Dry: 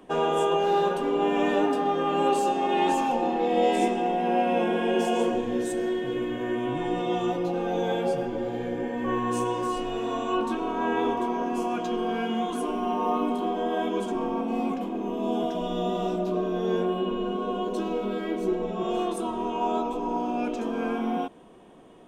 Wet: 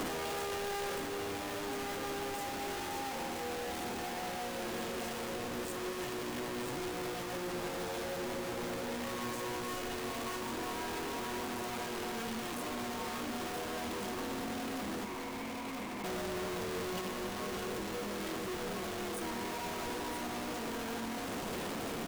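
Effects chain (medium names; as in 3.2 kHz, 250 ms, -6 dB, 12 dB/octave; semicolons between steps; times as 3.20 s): one-bit comparator; 15.05–16.04 s: two resonant band-passes 1.5 kHz, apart 1.1 oct; delay 974 ms -6.5 dB; on a send at -14 dB: reverberation RT60 1.0 s, pre-delay 3 ms; on the sum: peak limiter -25 dBFS, peak gain reduction 6 dB; trim -8.5 dB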